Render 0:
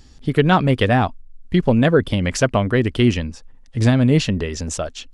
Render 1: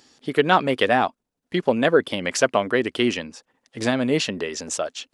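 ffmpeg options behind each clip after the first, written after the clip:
-af "highpass=340"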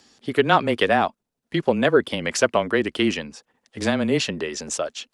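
-af "afreqshift=-18"

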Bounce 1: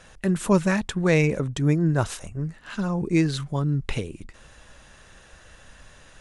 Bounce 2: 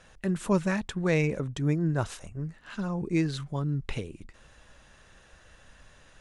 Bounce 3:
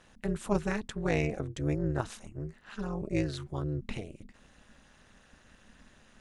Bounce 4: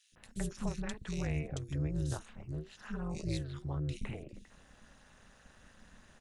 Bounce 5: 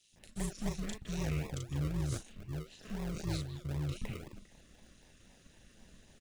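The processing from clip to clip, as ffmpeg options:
-af "highshelf=f=9500:g=-6.5,volume=0.531"
-af "tremolo=f=220:d=0.919"
-filter_complex "[0:a]acrossover=split=180|3000[s0][s1][s2];[s1]acompressor=threshold=0.01:ratio=6[s3];[s0][s3][s2]amix=inputs=3:normalize=0,acrossover=split=290|2800[s4][s5][s6];[s4]adelay=120[s7];[s5]adelay=160[s8];[s7][s8][s6]amix=inputs=3:normalize=0"
-filter_complex "[0:a]acrossover=split=240|2000[s0][s1][s2];[s1]acrusher=samples=41:mix=1:aa=0.000001:lfo=1:lforange=24.6:lforate=3.9[s3];[s2]asplit=2[s4][s5];[s5]adelay=37,volume=0.708[s6];[s4][s6]amix=inputs=2:normalize=0[s7];[s0][s3][s7]amix=inputs=3:normalize=0"

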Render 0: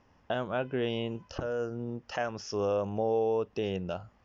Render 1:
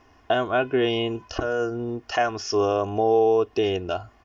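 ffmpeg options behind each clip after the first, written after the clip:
-af "lowshelf=f=260:g=-4,aecho=1:1:2.8:0.69,volume=2.66"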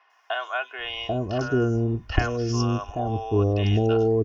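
-filter_complex "[0:a]acrossover=split=730|4400[s0][s1][s2];[s2]adelay=100[s3];[s0]adelay=790[s4];[s4][s1][s3]amix=inputs=3:normalize=0,asubboost=boost=7.5:cutoff=200"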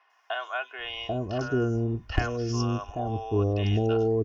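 -af "asoftclip=type=hard:threshold=0.355,volume=0.668"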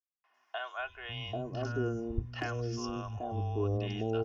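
-filter_complex "[0:a]acrossover=split=180[s0][s1];[s1]adelay=240[s2];[s0][s2]amix=inputs=2:normalize=0,volume=0.473"

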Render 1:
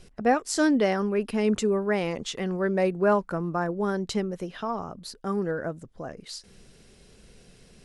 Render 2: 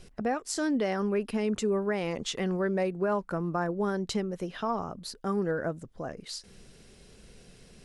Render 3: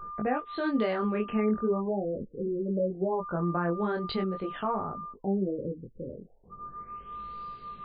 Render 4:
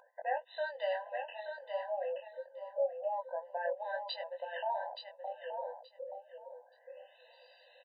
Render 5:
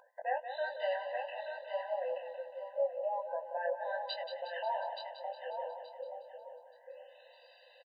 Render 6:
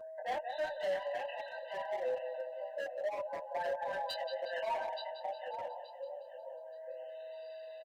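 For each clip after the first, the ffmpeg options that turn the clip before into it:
-af "alimiter=limit=0.106:level=0:latency=1:release=347"
-af "aeval=exprs='val(0)+0.01*sin(2*PI*1200*n/s)':c=same,flanger=delay=19:depth=4.6:speed=0.41,afftfilt=real='re*lt(b*sr/1024,530*pow(4900/530,0.5+0.5*sin(2*PI*0.3*pts/sr)))':imag='im*lt(b*sr/1024,530*pow(4900/530,0.5+0.5*sin(2*PI*0.3*pts/sr)))':win_size=1024:overlap=0.75,volume=1.5"
-filter_complex "[0:a]asplit=2[s0][s1];[s1]acompressor=threshold=0.0126:ratio=6,volume=0.841[s2];[s0][s2]amix=inputs=2:normalize=0,aecho=1:1:876|1752|2628:0.447|0.0849|0.0161,afftfilt=real='re*eq(mod(floor(b*sr/1024/510),2),1)':imag='im*eq(mod(floor(b*sr/1024/510),2),1)':win_size=1024:overlap=0.75,volume=0.631"
-af "aecho=1:1:181|362|543|724|905|1086|1267:0.355|0.202|0.115|0.0657|0.0375|0.0213|0.0122"
-filter_complex "[0:a]aeval=exprs='val(0)+0.00447*sin(2*PI*640*n/s)':c=same,volume=47.3,asoftclip=hard,volume=0.0211,asplit=2[s0][s1];[s1]adelay=6,afreqshift=-0.4[s2];[s0][s2]amix=inputs=2:normalize=1,volume=1.5"

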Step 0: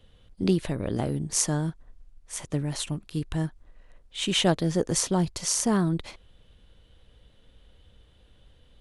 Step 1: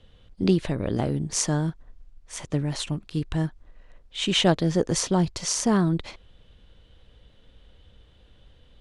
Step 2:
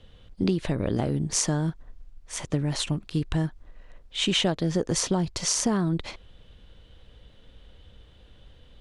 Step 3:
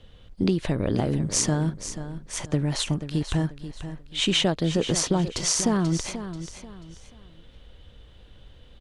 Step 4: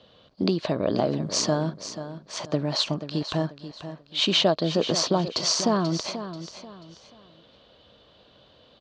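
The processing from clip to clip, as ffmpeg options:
-af "lowpass=6900,volume=1.33"
-af "acompressor=threshold=0.0708:ratio=6,volume=1.33"
-af "aecho=1:1:486|972|1458:0.266|0.0851|0.0272,volume=1.19"
-af "highpass=180,equalizer=f=630:t=q:w=4:g=9,equalizer=f=1100:t=q:w=4:g=6,equalizer=f=2000:t=q:w=4:g=-5,equalizer=f=4400:t=q:w=4:g=9,lowpass=f=5900:w=0.5412,lowpass=f=5900:w=1.3066"

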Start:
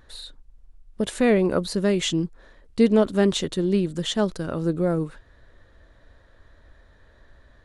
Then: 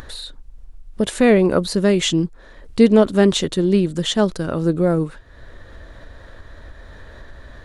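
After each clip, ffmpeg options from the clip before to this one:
-af "acompressor=mode=upward:threshold=0.02:ratio=2.5,volume=1.88"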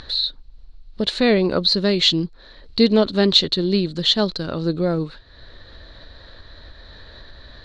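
-af "lowpass=f=4200:t=q:w=8.7,volume=0.668"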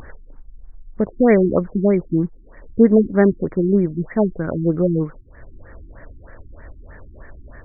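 -af "afftfilt=real='re*lt(b*sr/1024,350*pow(2400/350,0.5+0.5*sin(2*PI*3.2*pts/sr)))':imag='im*lt(b*sr/1024,350*pow(2400/350,0.5+0.5*sin(2*PI*3.2*pts/sr)))':win_size=1024:overlap=0.75,volume=1.5"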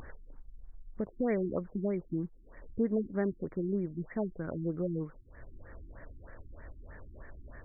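-af "acompressor=threshold=0.0158:ratio=1.5,volume=0.398"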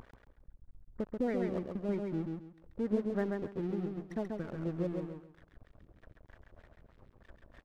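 -af "tremolo=f=4.1:d=0.43,aeval=exprs='sgn(val(0))*max(abs(val(0))-0.00398,0)':c=same,aecho=1:1:135|270|405|540:0.631|0.164|0.0427|0.0111"

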